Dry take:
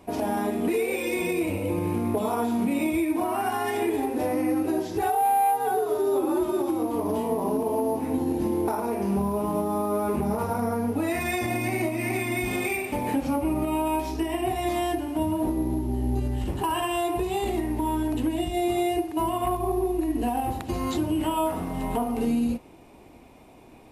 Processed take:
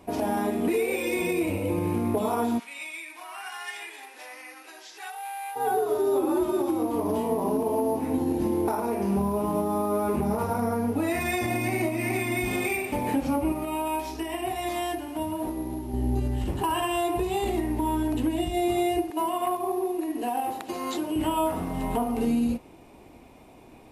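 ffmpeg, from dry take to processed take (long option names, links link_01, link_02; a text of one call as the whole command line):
ffmpeg -i in.wav -filter_complex "[0:a]asplit=3[link_01][link_02][link_03];[link_01]afade=type=out:start_time=2.58:duration=0.02[link_04];[link_02]asuperpass=centerf=3800:order=4:qfactor=0.56,afade=type=in:start_time=2.58:duration=0.02,afade=type=out:start_time=5.55:duration=0.02[link_05];[link_03]afade=type=in:start_time=5.55:duration=0.02[link_06];[link_04][link_05][link_06]amix=inputs=3:normalize=0,asettb=1/sr,asplit=3[link_07][link_08][link_09];[link_07]atrim=end=13.524[link_10];[link_08]atrim=start=13.52:end=15.94,asetpts=PTS-STARTPTS,afade=type=in:duration=0.004:curve=qsin,afade=type=out:start_time=2.416:duration=0.004:curve=qsin,lowshelf=frequency=440:gain=-8.5[link_11];[link_09]atrim=start=15.936[link_12];[link_10][link_11]acrossfade=duration=0.004:curve1=hsin:curve2=qsin[link_13];[link_13][link_12]acrossfade=duration=0.004:curve1=qsin:curve2=hsin,asettb=1/sr,asplit=3[link_14][link_15][link_16];[link_14]atrim=end=19.104[link_17];[link_15]atrim=start=19.1:end=21.16,asetpts=PTS-STARTPTS,afade=type=in:duration=0.004:curve=qsin,afade=type=out:start_time=2.056:duration=0.004:curve=qsin,highpass=340[link_18];[link_16]atrim=start=21.156[link_19];[link_17][link_18]acrossfade=duration=0.004:curve1=hsin:curve2=qsin[link_20];[link_20][link_19]acrossfade=duration=0.004:curve1=qsin:curve2=hsin" out.wav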